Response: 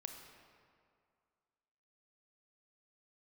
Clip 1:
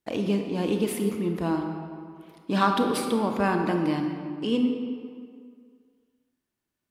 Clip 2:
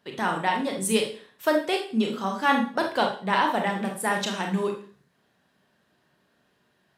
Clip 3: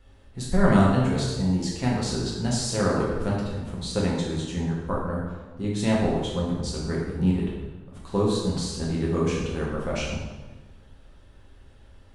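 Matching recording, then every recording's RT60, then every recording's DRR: 1; 2.2 s, 0.45 s, 1.2 s; 4.0 dB, 1.5 dB, -5.0 dB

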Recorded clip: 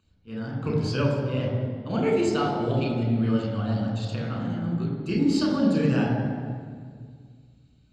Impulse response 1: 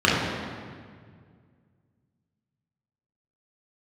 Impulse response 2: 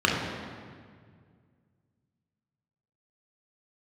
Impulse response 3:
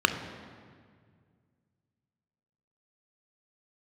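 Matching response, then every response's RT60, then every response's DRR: 2; 1.9 s, 1.9 s, 1.9 s; -7.0 dB, -2.5 dB, 7.0 dB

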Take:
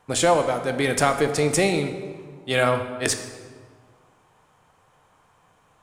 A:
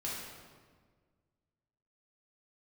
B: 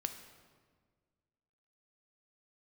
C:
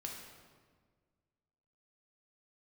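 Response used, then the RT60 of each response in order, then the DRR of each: B; 1.6 s, 1.6 s, 1.6 s; -6.5 dB, 7.0 dB, -0.5 dB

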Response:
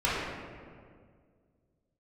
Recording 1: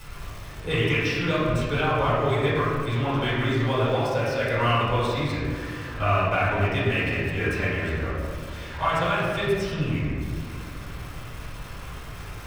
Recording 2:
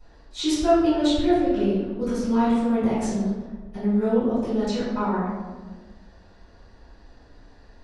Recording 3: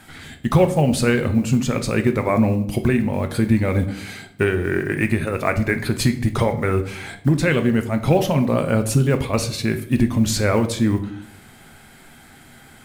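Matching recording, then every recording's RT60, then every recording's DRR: 1; 2.0 s, 1.4 s, 0.70 s; -10.0 dB, -19.5 dB, 7.0 dB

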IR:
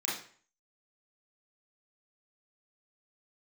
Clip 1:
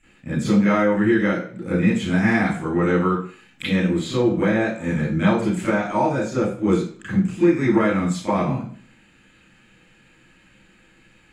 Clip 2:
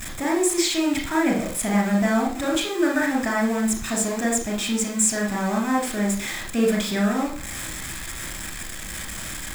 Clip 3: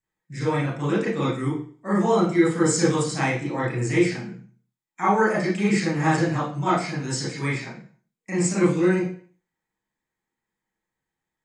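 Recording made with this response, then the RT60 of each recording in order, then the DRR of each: 3; 0.45 s, 0.45 s, 0.45 s; -13.0 dB, 0.0 dB, -7.0 dB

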